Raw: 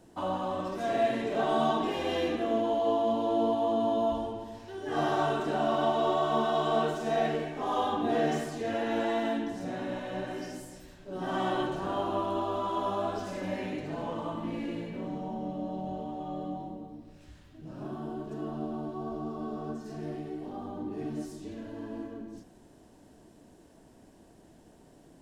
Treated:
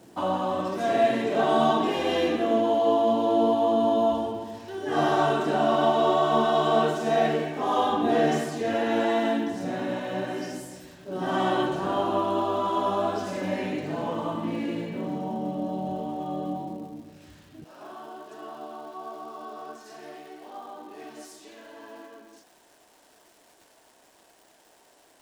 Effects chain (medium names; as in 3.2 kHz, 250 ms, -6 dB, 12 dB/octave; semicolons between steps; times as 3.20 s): high-pass 110 Hz 12 dB/octave, from 17.64 s 730 Hz; crackle 440 per s -54 dBFS; trim +5.5 dB